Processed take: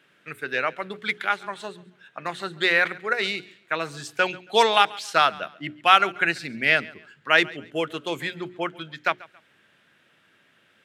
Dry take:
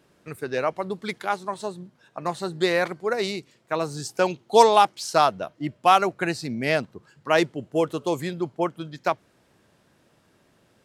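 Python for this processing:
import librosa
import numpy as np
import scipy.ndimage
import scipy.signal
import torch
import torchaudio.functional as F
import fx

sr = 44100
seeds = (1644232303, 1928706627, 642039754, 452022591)

p1 = scipy.signal.sosfilt(scipy.signal.butter(2, 120.0, 'highpass', fs=sr, output='sos'), x)
p2 = fx.band_shelf(p1, sr, hz=2200.0, db=12.5, octaves=1.7)
p3 = fx.hum_notches(p2, sr, base_hz=60, count=7)
p4 = p3 + fx.echo_feedback(p3, sr, ms=138, feedback_pct=30, wet_db=-21.5, dry=0)
y = p4 * librosa.db_to_amplitude(-4.5)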